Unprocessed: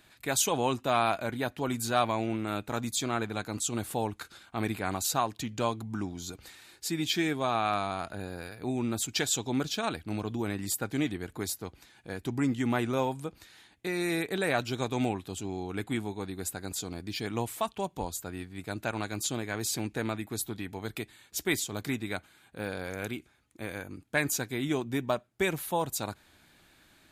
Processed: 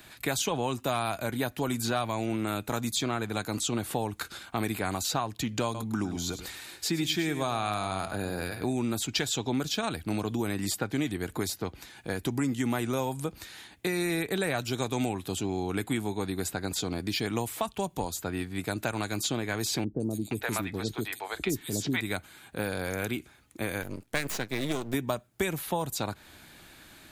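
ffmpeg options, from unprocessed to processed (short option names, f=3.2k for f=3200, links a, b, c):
-filter_complex "[0:a]asettb=1/sr,asplit=3[a][b][c];[a]atrim=end=5.644[d];[b]atrim=start=5.64:end=8.73,asetpts=PTS-STARTPTS,afade=t=in:d=0.004:c=qsin,afade=t=out:st=3.086:d=0.004:c=qsin,aecho=1:1:104:0.251,atrim=end_sample=136269[e];[c]atrim=start=8.726[f];[d][e]acrossfade=d=0.004:c1=hsin:c2=qsin[g];[g][f]acrossfade=d=0.004:c1=qsin:c2=hsin,asettb=1/sr,asplit=3[h][i][j];[h]atrim=end=19.844[k];[i]atrim=start=19.84:end=22.01,asetpts=PTS-STARTPTS,afade=t=in:d=0.004:c=qsin,afade=t=out:st=2.166:d=0.004:c=qsin,acrossover=split=530|5100[l][m][n];[n]adelay=160[o];[m]adelay=470[p];[l][p][o]amix=inputs=3:normalize=0,atrim=end_sample=95697[q];[j]atrim=start=22.006[r];[k][q]acrossfade=d=0.004:c1=hsin:c2=qsin[s];[s][r]acrossfade=d=0.004:c1=qsin:c2=hsin,asettb=1/sr,asplit=3[t][u][v];[t]atrim=end=23.824[w];[u]atrim=start=23.82:end=24.94,asetpts=PTS-STARTPTS,afade=t=in:d=0.004:c=qsin,afade=t=out:st=1.116:d=0.004:c=qsin,aeval=exprs='max(val(0),0)':c=same[x];[v]atrim=start=24.936[y];[w][x]acrossfade=d=0.004:c1=hsin:c2=qsin[z];[z][y]acrossfade=d=0.004:c1=qsin:c2=hsin,highshelf=f=12k:g=6,acrossover=split=150|5400[aa][ab][ac];[aa]acompressor=threshold=-48dB:ratio=4[ad];[ab]acompressor=threshold=-37dB:ratio=4[ae];[ac]acompressor=threshold=-49dB:ratio=4[af];[ad][ae][af]amix=inputs=3:normalize=0,volume=8.5dB"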